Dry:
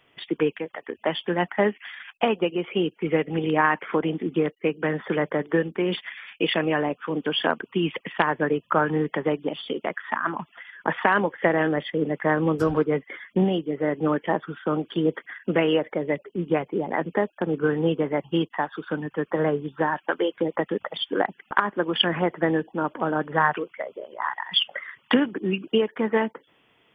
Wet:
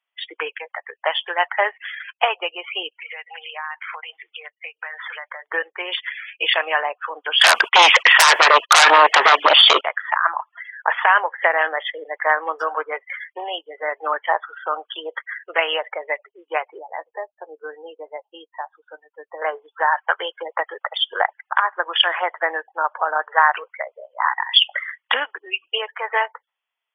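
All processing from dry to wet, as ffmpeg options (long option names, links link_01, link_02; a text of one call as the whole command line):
ffmpeg -i in.wav -filter_complex "[0:a]asettb=1/sr,asplit=3[link_01][link_02][link_03];[link_01]atrim=end=2.924[link_04];[link_02]atrim=start=2.92:end=5.42,asetpts=PTS-STARTPTS,afade=type=in:duration=0.004:curve=qsin,afade=type=out:start_time=2.496:duration=0.004:curve=qsin,highpass=530,lowpass=3700,highshelf=frequency=2100:gain=11,acompressor=threshold=-35dB:ratio=5:attack=3.2:release=140:knee=1:detection=peak[link_05];[link_03]atrim=start=5.416[link_06];[link_04][link_05]acrossfade=duration=0.004:curve1=hsin:curve2=qsin[link_07];[link_07][link_06]acrossfade=duration=0.004:curve1=qsin:curve2=hsin,asettb=1/sr,asplit=3[link_08][link_09][link_10];[link_08]atrim=end=7.414[link_11];[link_09]atrim=start=7.41:end=9.81,asetpts=PTS-STARTPTS,afade=type=in:duration=0.004:curve=qsin,afade=type=out:start_time=2.396:duration=0.004:curve=qsin,agate=range=-44dB:threshold=-47dB:ratio=16:release=100:detection=peak,aeval=exprs='0.668*sin(PI/2*10*val(0)/0.668)':channel_layout=same[link_12];[link_10]atrim=start=9.806[link_13];[link_11][link_12]acrossfade=duration=0.004:curve1=hsin:curve2=qsin[link_14];[link_14][link_13]acrossfade=duration=0.004:curve1=qsin:curve2=hsin,asettb=1/sr,asplit=3[link_15][link_16][link_17];[link_15]atrim=end=16.794[link_18];[link_16]atrim=start=16.79:end=19.42,asetpts=PTS-STARTPTS,afade=type=in:duration=0.004:curve=qsin,afade=type=out:start_time=2.626:duration=0.004:curve=qsin,lowpass=2300,equalizer=frequency=1400:width_type=o:width=2.5:gain=-14,asplit=2[link_19][link_20];[link_20]adelay=13,volume=-11.5dB[link_21];[link_19][link_21]amix=inputs=2:normalize=0,atrim=end_sample=115983[link_22];[link_17]atrim=start=19.416[link_23];[link_18][link_22]acrossfade=duration=0.004:curve1=hsin:curve2=qsin[link_24];[link_24][link_23]acrossfade=duration=0.004:curve1=qsin:curve2=hsin,highpass=frequency=720:width=0.5412,highpass=frequency=720:width=1.3066,afftdn=noise_reduction=29:noise_floor=-41,alimiter=level_in=9.5dB:limit=-1dB:release=50:level=0:latency=1,volume=-1dB" out.wav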